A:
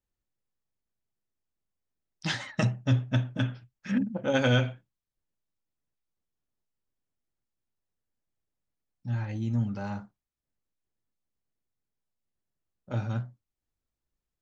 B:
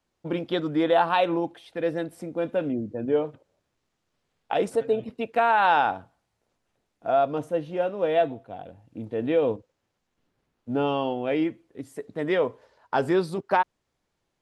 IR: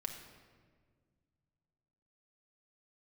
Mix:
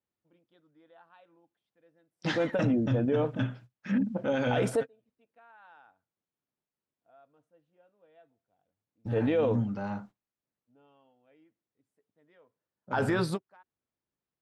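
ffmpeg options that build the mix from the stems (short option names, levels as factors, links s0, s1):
-filter_complex "[0:a]highpass=140,aemphasis=mode=reproduction:type=75kf,volume=1.19,asplit=2[s0][s1];[1:a]bandreject=f=380:w=12,adynamicequalizer=threshold=0.0126:dfrequency=1500:dqfactor=1.8:tfrequency=1500:tqfactor=1.8:attack=5:release=100:ratio=0.375:range=3.5:mode=boostabove:tftype=bell,volume=1.33[s2];[s1]apad=whole_len=635857[s3];[s2][s3]sidechaingate=range=0.00891:threshold=0.00398:ratio=16:detection=peak[s4];[s0][s4]amix=inputs=2:normalize=0,alimiter=limit=0.112:level=0:latency=1:release=19"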